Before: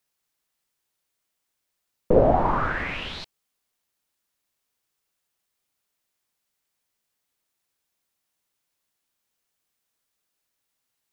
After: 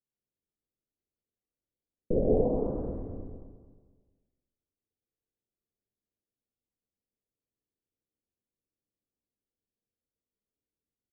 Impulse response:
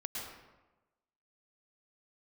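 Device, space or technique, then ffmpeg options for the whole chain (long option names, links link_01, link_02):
next room: -filter_complex "[0:a]asettb=1/sr,asplit=3[link_01][link_02][link_03];[link_01]atrim=end=2.214[link_04];[link_02]atrim=start=2.21:end=2.66,asetpts=PTS-STARTPTS,afade=type=in:duration=0.004:curve=qsin,afade=type=out:start_time=0.446:duration=0.004:curve=qsin,highpass=170[link_05];[link_03]atrim=start=2.656[link_06];[link_04][link_05]acrossfade=duration=0.004:curve1=hsin:curve2=qsin[link_07];[link_07][link_06]acrossfade=duration=0.004:curve1=qsin:curve2=hsin,lowpass=frequency=480:width=0.5412,lowpass=frequency=480:width=1.3066,aecho=1:1:222|444|666|888:0.282|0.113|0.0451|0.018[link_08];[1:a]atrim=start_sample=2205[link_09];[link_08][link_09]afir=irnorm=-1:irlink=0,volume=-4dB"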